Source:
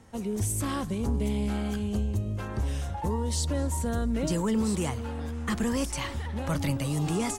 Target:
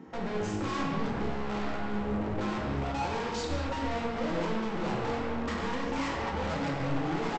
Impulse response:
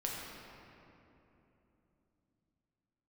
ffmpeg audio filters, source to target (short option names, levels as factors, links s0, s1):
-filter_complex "[0:a]asplit=2[s0][s1];[s1]alimiter=level_in=1.88:limit=0.0631:level=0:latency=1:release=175,volume=0.531,volume=1[s2];[s0][s2]amix=inputs=2:normalize=0,highpass=76,afwtdn=0.0178,highshelf=f=3500:g=-9,asplit=2[s3][s4];[s4]highpass=f=720:p=1,volume=28.2,asoftclip=type=tanh:threshold=0.168[s5];[s3][s5]amix=inputs=2:normalize=0,lowpass=f=2000:p=1,volume=0.501,bandreject=f=50:t=h:w=6,bandreject=f=100:t=h:w=6,bandreject=f=150:t=h:w=6,aresample=16000,volume=28.2,asoftclip=hard,volume=0.0355,aresample=44100[s6];[1:a]atrim=start_sample=2205,afade=t=out:st=0.31:d=0.01,atrim=end_sample=14112[s7];[s6][s7]afir=irnorm=-1:irlink=0,volume=0.596"